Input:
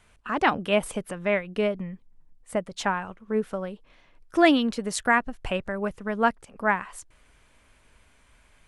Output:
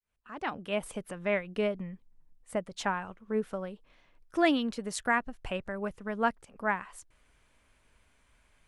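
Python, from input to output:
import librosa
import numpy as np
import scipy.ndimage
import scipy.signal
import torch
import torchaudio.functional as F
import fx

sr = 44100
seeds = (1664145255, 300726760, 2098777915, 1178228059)

y = fx.fade_in_head(x, sr, length_s=1.4)
y = fx.rider(y, sr, range_db=10, speed_s=2.0)
y = y * 10.0 ** (-6.5 / 20.0)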